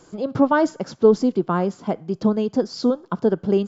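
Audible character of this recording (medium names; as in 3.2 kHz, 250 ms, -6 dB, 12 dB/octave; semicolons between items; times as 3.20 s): noise floor -52 dBFS; spectral tilt -4.5 dB/octave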